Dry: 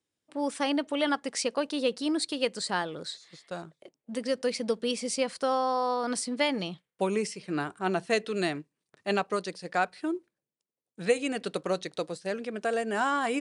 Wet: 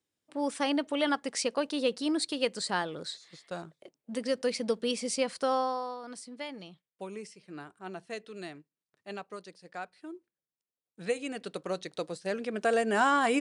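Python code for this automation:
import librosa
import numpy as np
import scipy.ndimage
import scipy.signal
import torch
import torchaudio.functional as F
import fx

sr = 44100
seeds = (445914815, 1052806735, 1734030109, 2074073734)

y = fx.gain(x, sr, db=fx.line((5.6, -1.0), (6.01, -13.0), (10.05, -13.0), (11.03, -6.0), (11.53, -6.0), (12.72, 2.5)))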